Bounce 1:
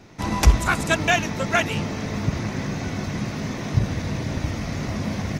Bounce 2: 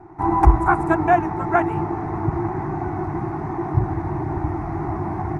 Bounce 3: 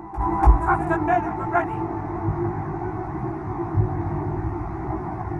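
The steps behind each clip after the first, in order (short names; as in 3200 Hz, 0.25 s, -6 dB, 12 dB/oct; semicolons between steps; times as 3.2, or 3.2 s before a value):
EQ curve 150 Hz 0 dB, 240 Hz -12 dB, 340 Hz +14 dB, 530 Hz -17 dB, 770 Hz +13 dB, 2100 Hz -10 dB, 3100 Hz -27 dB, 6500 Hz -27 dB, 9600 Hz -15 dB, 14000 Hz -29 dB; gain +1 dB
chorus voices 2, 0.61 Hz, delay 18 ms, depth 2.4 ms; pre-echo 0.29 s -14.5 dB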